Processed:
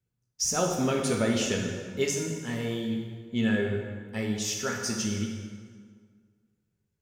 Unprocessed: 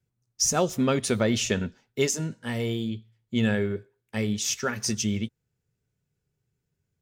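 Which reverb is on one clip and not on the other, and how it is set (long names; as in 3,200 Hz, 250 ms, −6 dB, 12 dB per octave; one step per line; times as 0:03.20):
dense smooth reverb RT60 1.8 s, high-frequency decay 0.7×, DRR 0 dB
level −5 dB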